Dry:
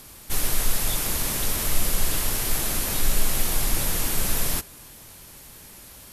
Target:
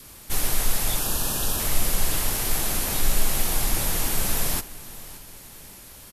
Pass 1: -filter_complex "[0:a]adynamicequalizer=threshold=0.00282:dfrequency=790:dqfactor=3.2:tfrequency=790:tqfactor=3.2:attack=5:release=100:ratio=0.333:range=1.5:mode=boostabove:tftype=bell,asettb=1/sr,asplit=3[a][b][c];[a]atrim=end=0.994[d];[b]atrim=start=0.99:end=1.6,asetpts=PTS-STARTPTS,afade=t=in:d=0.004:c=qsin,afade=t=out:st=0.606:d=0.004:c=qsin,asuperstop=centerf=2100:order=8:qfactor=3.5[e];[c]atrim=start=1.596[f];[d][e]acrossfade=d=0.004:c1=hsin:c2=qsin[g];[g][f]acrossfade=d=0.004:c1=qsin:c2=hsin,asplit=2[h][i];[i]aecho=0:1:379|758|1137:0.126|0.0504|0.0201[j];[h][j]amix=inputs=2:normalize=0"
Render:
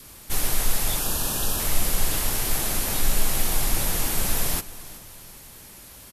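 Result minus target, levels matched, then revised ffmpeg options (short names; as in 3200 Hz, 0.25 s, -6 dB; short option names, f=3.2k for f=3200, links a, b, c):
echo 0.197 s early
-filter_complex "[0:a]adynamicequalizer=threshold=0.00282:dfrequency=790:dqfactor=3.2:tfrequency=790:tqfactor=3.2:attack=5:release=100:ratio=0.333:range=1.5:mode=boostabove:tftype=bell,asettb=1/sr,asplit=3[a][b][c];[a]atrim=end=0.994[d];[b]atrim=start=0.99:end=1.6,asetpts=PTS-STARTPTS,afade=t=in:d=0.004:c=qsin,afade=t=out:st=0.606:d=0.004:c=qsin,asuperstop=centerf=2100:order=8:qfactor=3.5[e];[c]atrim=start=1.596[f];[d][e]acrossfade=d=0.004:c1=hsin:c2=qsin[g];[g][f]acrossfade=d=0.004:c1=qsin:c2=hsin,asplit=2[h][i];[i]aecho=0:1:576|1152|1728:0.126|0.0504|0.0201[j];[h][j]amix=inputs=2:normalize=0"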